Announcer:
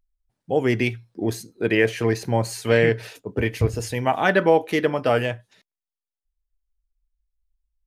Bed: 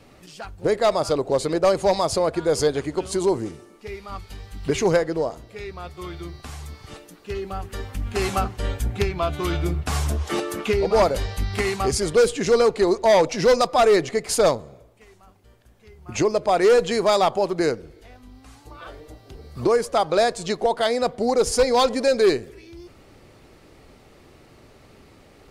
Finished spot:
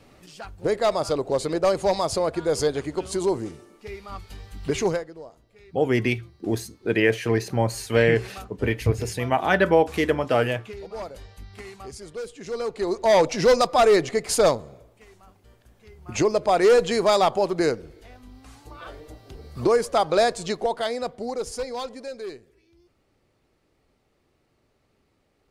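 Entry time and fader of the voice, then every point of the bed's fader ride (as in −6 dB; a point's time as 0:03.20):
5.25 s, −1.0 dB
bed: 0:04.86 −2.5 dB
0:05.12 −17 dB
0:12.32 −17 dB
0:13.18 −0.5 dB
0:20.31 −0.5 dB
0:22.31 −18 dB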